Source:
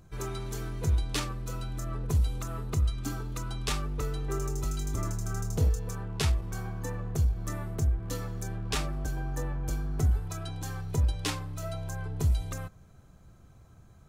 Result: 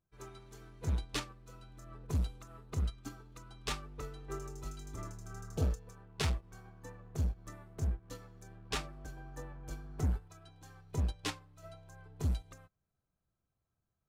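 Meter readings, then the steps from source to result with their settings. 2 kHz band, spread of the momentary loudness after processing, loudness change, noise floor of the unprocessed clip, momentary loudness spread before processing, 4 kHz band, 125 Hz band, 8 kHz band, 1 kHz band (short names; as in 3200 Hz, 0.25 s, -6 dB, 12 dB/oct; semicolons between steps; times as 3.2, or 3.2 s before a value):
-6.0 dB, 19 LU, -7.5 dB, -55 dBFS, 8 LU, -6.0 dB, -9.0 dB, -9.5 dB, -7.5 dB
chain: high shelf 7400 Hz -8 dB; hard clip -22.5 dBFS, distortion -17 dB; spectral repair 5.45–5.68, 910–2200 Hz; low shelf 240 Hz -5.5 dB; upward expander 2.5:1, over -47 dBFS; gain +1.5 dB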